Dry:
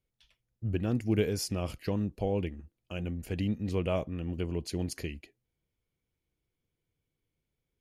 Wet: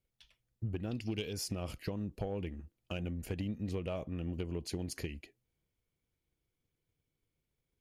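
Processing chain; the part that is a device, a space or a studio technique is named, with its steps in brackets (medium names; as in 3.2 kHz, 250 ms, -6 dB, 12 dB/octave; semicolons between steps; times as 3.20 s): 0.91–1.33 s: high-order bell 3.7 kHz +14 dB 1.3 oct; drum-bus smash (transient shaper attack +6 dB, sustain +2 dB; compression 8:1, threshold -30 dBFS, peak gain reduction 12.5 dB; saturation -24 dBFS, distortion -20 dB); trim -2 dB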